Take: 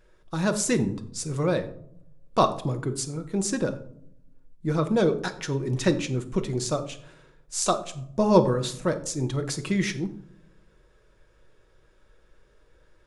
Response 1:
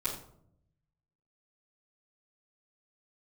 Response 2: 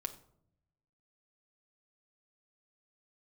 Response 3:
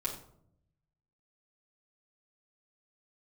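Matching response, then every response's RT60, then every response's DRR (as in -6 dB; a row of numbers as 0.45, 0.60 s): 2; 0.70, 0.70, 0.70 s; -13.0, 6.0, -4.0 dB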